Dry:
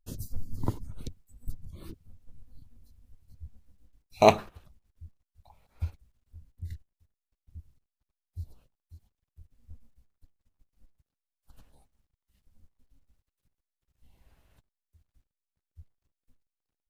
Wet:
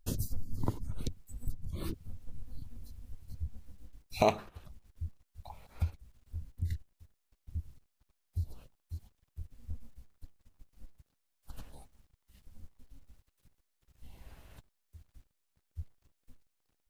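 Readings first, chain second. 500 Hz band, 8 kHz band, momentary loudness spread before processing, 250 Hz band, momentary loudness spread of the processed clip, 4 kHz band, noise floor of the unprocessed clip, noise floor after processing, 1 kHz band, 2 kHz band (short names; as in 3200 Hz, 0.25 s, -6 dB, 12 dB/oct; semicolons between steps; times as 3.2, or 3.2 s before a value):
-8.0 dB, -2.0 dB, 26 LU, -4.0 dB, 21 LU, -6.0 dB, under -85 dBFS, -80 dBFS, -8.0 dB, -7.5 dB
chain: compressor 2.5:1, threshold -42 dBFS, peak gain reduction 19.5 dB; gain +9.5 dB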